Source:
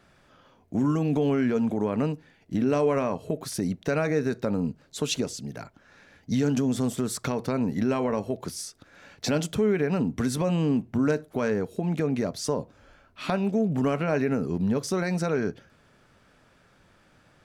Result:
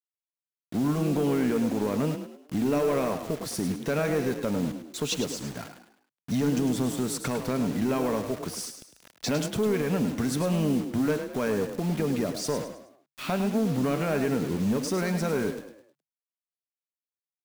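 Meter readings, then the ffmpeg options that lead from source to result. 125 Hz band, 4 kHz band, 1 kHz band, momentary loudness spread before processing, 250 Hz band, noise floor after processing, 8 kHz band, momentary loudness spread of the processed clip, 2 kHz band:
-1.5 dB, +1.0 dB, -1.0 dB, 9 LU, -1.0 dB, under -85 dBFS, +1.0 dB, 9 LU, -0.5 dB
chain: -filter_complex "[0:a]asoftclip=type=tanh:threshold=-19dB,acrusher=bits=6:mix=0:aa=0.000001,asplit=2[a][b];[b]asplit=4[c][d][e][f];[c]adelay=104,afreqshift=35,volume=-9dB[g];[d]adelay=208,afreqshift=70,volume=-17.2dB[h];[e]adelay=312,afreqshift=105,volume=-25.4dB[i];[f]adelay=416,afreqshift=140,volume=-33.5dB[j];[g][h][i][j]amix=inputs=4:normalize=0[k];[a][k]amix=inputs=2:normalize=0"

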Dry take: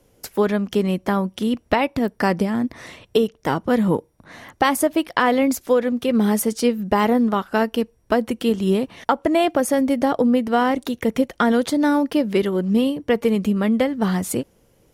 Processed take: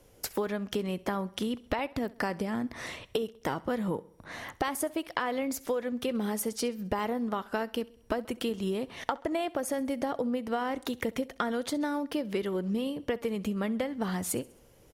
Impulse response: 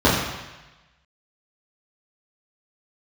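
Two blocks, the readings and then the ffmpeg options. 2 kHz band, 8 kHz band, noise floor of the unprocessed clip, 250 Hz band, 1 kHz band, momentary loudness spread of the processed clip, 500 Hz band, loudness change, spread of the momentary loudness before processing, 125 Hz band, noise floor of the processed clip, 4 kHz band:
-10.5 dB, -7.5 dB, -60 dBFS, -13.0 dB, -12.0 dB, 4 LU, -12.0 dB, -12.0 dB, 5 LU, -12.0 dB, -59 dBFS, -9.0 dB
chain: -af "equalizer=f=210:t=o:w=1.5:g=-4,acompressor=threshold=-29dB:ratio=5,aecho=1:1:66|132|198|264:0.0841|0.0429|0.0219|0.0112"

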